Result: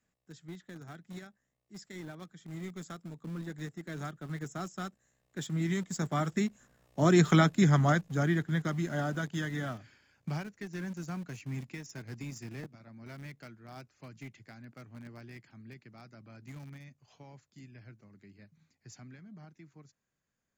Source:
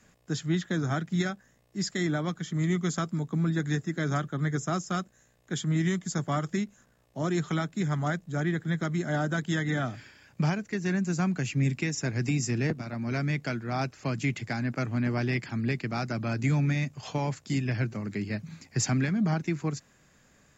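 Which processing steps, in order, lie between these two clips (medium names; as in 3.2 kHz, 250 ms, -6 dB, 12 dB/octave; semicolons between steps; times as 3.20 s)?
Doppler pass-by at 7.37 s, 9 m/s, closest 4.3 m; in parallel at -7 dB: small samples zeroed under -45 dBFS; on the sum: trim +3.5 dB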